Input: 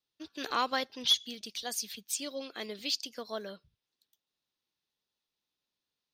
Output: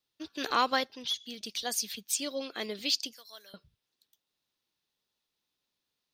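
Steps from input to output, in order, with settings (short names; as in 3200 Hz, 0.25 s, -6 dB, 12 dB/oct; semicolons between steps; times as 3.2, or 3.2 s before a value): 0.75–1.49 dip -11.5 dB, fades 0.37 s; 3.13–3.54 differentiator; gain +3.5 dB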